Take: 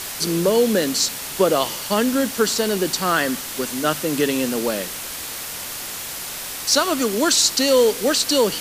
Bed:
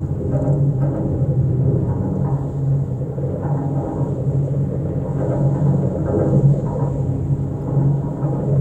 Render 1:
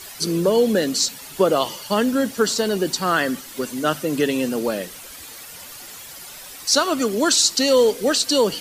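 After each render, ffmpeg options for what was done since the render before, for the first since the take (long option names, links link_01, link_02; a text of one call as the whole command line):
ffmpeg -i in.wav -af "afftdn=noise_reduction=11:noise_floor=-31" out.wav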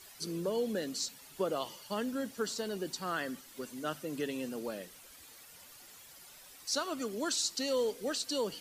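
ffmpeg -i in.wav -af "volume=-16dB" out.wav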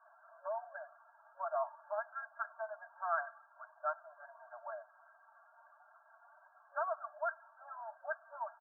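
ffmpeg -i in.wav -af "afftfilt=real='re*between(b*sr/4096,560,1700)':imag='im*between(b*sr/4096,560,1700)':win_size=4096:overlap=0.75,aecho=1:1:4.4:0.74" out.wav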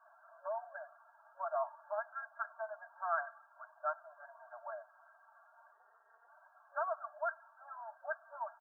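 ffmpeg -i in.wav -filter_complex "[0:a]asplit=3[link_01][link_02][link_03];[link_01]afade=type=out:start_time=5.71:duration=0.02[link_04];[link_02]tremolo=f=220:d=0.71,afade=type=in:start_time=5.71:duration=0.02,afade=type=out:start_time=6.28:duration=0.02[link_05];[link_03]afade=type=in:start_time=6.28:duration=0.02[link_06];[link_04][link_05][link_06]amix=inputs=3:normalize=0,asettb=1/sr,asplit=3[link_07][link_08][link_09];[link_07]atrim=end=7.414[link_10];[link_08]atrim=start=7.41:end=8.02,asetpts=PTS-STARTPTS,afade=type=in:duration=0.004:curve=qsin,afade=type=out:start_time=0.606:duration=0.004:curve=qsin,equalizer=frequency=480:width_type=o:width=0.77:gain=-6[link_11];[link_09]atrim=start=8.016[link_12];[link_10][link_11]acrossfade=duration=0.004:curve1=hsin:curve2=qsin[link_13];[link_13][link_12]acrossfade=duration=0.004:curve1=qsin:curve2=hsin" out.wav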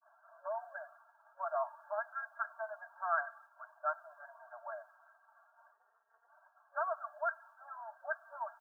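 ffmpeg -i in.wav -af "agate=range=-33dB:threshold=-60dB:ratio=3:detection=peak,adynamicequalizer=threshold=0.00355:dfrequency=1500:dqfactor=0.7:tfrequency=1500:tqfactor=0.7:attack=5:release=100:ratio=0.375:range=3:mode=boostabove:tftype=highshelf" out.wav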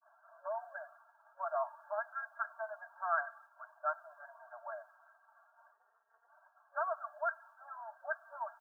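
ffmpeg -i in.wav -af anull out.wav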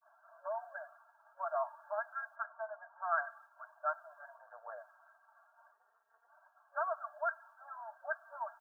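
ffmpeg -i in.wav -filter_complex "[0:a]asplit=3[link_01][link_02][link_03];[link_01]afade=type=out:start_time=2.35:duration=0.02[link_04];[link_02]lowpass=1500,afade=type=in:start_time=2.35:duration=0.02,afade=type=out:start_time=3.1:duration=0.02[link_05];[link_03]afade=type=in:start_time=3.1:duration=0.02[link_06];[link_04][link_05][link_06]amix=inputs=3:normalize=0,asplit=3[link_07][link_08][link_09];[link_07]afade=type=out:start_time=4.36:duration=0.02[link_10];[link_08]tremolo=f=110:d=0.667,afade=type=in:start_time=4.36:duration=0.02,afade=type=out:start_time=4.77:duration=0.02[link_11];[link_09]afade=type=in:start_time=4.77:duration=0.02[link_12];[link_10][link_11][link_12]amix=inputs=3:normalize=0" out.wav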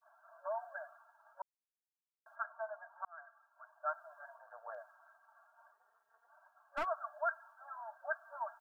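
ffmpeg -i in.wav -filter_complex "[0:a]asplit=3[link_01][link_02][link_03];[link_01]afade=type=out:start_time=4.7:duration=0.02[link_04];[link_02]aeval=exprs='clip(val(0),-1,0.0119)':channel_layout=same,afade=type=in:start_time=4.7:duration=0.02,afade=type=out:start_time=6.84:duration=0.02[link_05];[link_03]afade=type=in:start_time=6.84:duration=0.02[link_06];[link_04][link_05][link_06]amix=inputs=3:normalize=0,asplit=4[link_07][link_08][link_09][link_10];[link_07]atrim=end=1.42,asetpts=PTS-STARTPTS,afade=type=out:start_time=1.416:duration=0.004:curve=hsin[link_11];[link_08]atrim=start=1.42:end=2.26,asetpts=PTS-STARTPTS,volume=0[link_12];[link_09]atrim=start=2.26:end=3.05,asetpts=PTS-STARTPTS,afade=type=in:duration=0.004:curve=hsin,afade=type=out:start_time=0.786:duration=0.004:curve=hsin[link_13];[link_10]atrim=start=3.05,asetpts=PTS-STARTPTS,afade=type=in:duration=1.09[link_14];[link_11][link_12][link_13][link_14]concat=n=4:v=0:a=1" out.wav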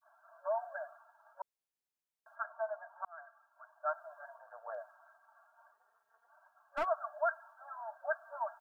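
ffmpeg -i in.wav -af "adynamicequalizer=threshold=0.002:dfrequency=580:dqfactor=1.1:tfrequency=580:tqfactor=1.1:attack=5:release=100:ratio=0.375:range=3:mode=boostabove:tftype=bell" out.wav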